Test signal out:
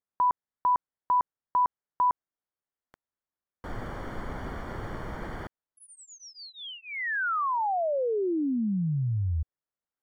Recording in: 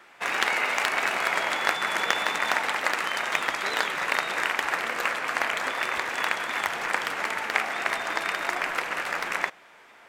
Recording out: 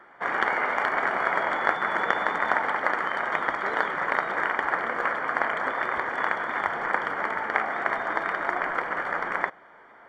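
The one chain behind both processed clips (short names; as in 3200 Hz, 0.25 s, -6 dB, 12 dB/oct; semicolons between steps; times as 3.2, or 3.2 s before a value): polynomial smoothing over 41 samples; gain +3 dB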